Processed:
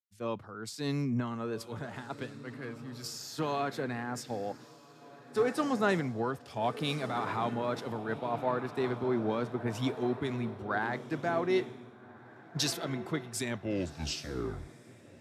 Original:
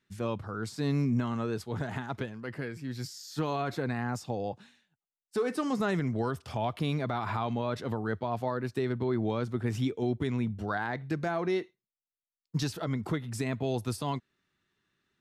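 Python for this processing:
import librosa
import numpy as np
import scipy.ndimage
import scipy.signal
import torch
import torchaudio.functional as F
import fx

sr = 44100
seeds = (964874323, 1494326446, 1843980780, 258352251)

y = fx.tape_stop_end(x, sr, length_s=1.88)
y = fx.highpass(y, sr, hz=210.0, slope=6)
y = fx.echo_diffused(y, sr, ms=1503, feedback_pct=41, wet_db=-9.0)
y = fx.band_widen(y, sr, depth_pct=100)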